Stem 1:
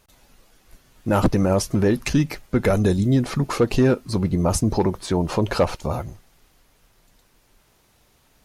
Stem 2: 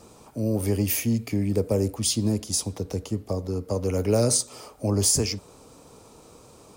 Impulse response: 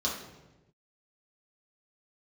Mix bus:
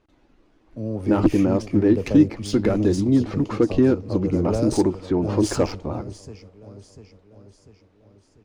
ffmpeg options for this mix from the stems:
-filter_complex "[0:a]equalizer=f=310:t=o:w=0.52:g=14.5,volume=0.531[s0];[1:a]agate=range=0.0224:threshold=0.0112:ratio=3:detection=peak,adelay=400,volume=0.708,asplit=2[s1][s2];[s2]volume=0.282,aecho=0:1:695|1390|2085|2780|3475|4170|4865:1|0.51|0.26|0.133|0.0677|0.0345|0.0176[s3];[s0][s1][s3]amix=inputs=3:normalize=0,adynamicsmooth=sensitivity=1.5:basefreq=3200"

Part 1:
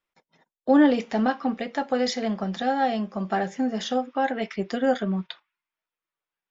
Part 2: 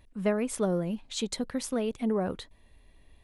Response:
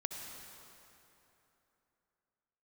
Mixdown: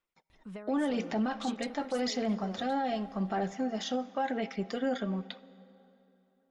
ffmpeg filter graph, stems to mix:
-filter_complex "[0:a]aphaser=in_gain=1:out_gain=1:delay=3.7:decay=0.38:speed=0.9:type=sinusoidal,volume=0.473,asplit=2[s0][s1];[s1]volume=0.168[s2];[1:a]lowpass=7300,tiltshelf=f=760:g=-3.5,acompressor=threshold=0.0141:ratio=12,adelay=300,volume=0.631[s3];[2:a]atrim=start_sample=2205[s4];[s2][s4]afir=irnorm=-1:irlink=0[s5];[s0][s3][s5]amix=inputs=3:normalize=0,bandreject=f=1700:w=16,alimiter=limit=0.0708:level=0:latency=1:release=23"

